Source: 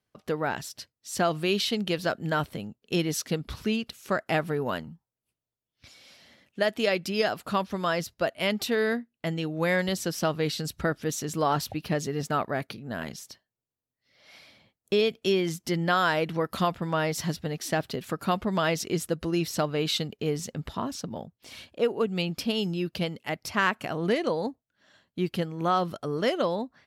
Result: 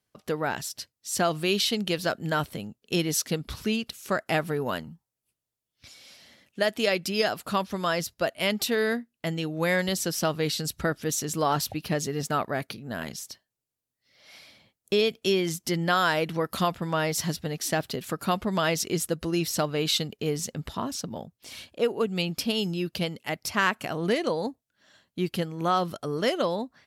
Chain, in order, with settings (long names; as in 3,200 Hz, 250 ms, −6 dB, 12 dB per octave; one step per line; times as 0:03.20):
parametric band 11,000 Hz +6.5 dB 2.1 octaves